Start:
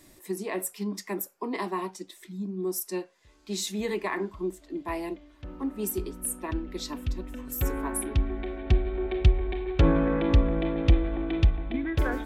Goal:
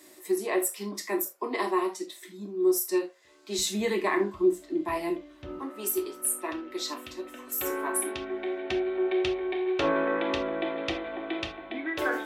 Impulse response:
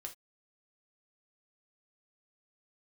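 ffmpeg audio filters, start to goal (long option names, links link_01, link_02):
-filter_complex "[0:a]asetnsamples=nb_out_samples=441:pad=0,asendcmd='3.59 highpass f 120;5.59 highpass f 450',highpass=310[link_01];[1:a]atrim=start_sample=2205[link_02];[link_01][link_02]afir=irnorm=-1:irlink=0,volume=7.5dB"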